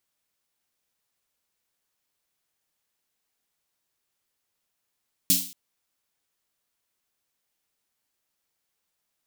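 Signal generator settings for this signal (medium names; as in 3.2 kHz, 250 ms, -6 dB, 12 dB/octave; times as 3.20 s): snare drum length 0.23 s, tones 180 Hz, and 270 Hz, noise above 3.1 kHz, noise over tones 11 dB, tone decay 0.37 s, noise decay 0.44 s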